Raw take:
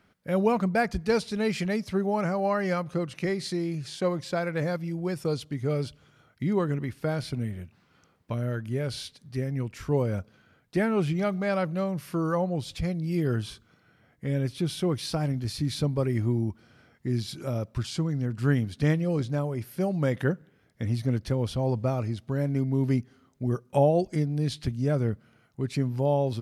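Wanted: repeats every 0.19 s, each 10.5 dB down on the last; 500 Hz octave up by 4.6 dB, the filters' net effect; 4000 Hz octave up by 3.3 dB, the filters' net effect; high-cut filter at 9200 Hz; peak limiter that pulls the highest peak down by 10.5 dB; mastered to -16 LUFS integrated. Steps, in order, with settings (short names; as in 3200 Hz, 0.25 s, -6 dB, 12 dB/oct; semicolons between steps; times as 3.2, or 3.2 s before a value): LPF 9200 Hz; bell 500 Hz +5.5 dB; bell 4000 Hz +4 dB; limiter -18 dBFS; feedback echo 0.19 s, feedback 30%, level -10.5 dB; gain +12 dB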